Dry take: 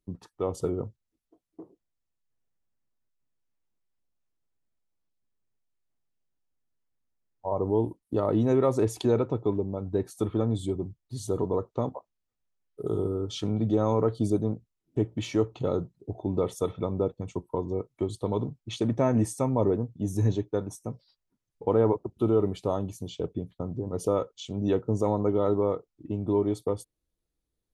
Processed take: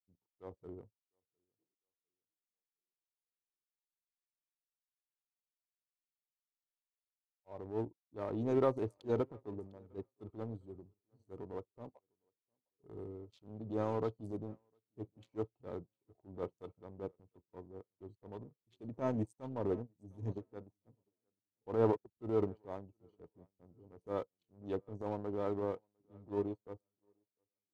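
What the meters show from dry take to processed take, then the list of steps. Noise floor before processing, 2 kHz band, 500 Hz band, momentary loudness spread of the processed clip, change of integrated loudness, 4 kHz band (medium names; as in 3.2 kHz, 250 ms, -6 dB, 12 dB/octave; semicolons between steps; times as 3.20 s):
-84 dBFS, -8.5 dB, -12.0 dB, 19 LU, -11.0 dB, under -20 dB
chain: local Wiener filter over 25 samples; transient shaper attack -8 dB, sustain +5 dB; dynamic bell 140 Hz, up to -4 dB, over -41 dBFS, Q 0.85; on a send: tape echo 706 ms, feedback 40%, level -15 dB, low-pass 4.1 kHz; on the sum: upward expansion 2.5:1, over -48 dBFS; trim -3 dB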